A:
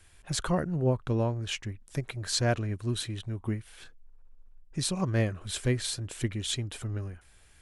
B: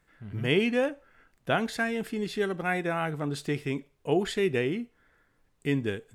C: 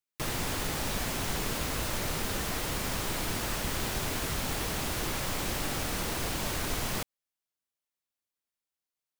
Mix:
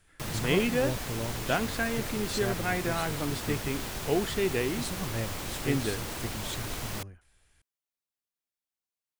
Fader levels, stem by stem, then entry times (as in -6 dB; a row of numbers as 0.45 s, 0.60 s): -7.5 dB, -2.0 dB, -4.0 dB; 0.00 s, 0.00 s, 0.00 s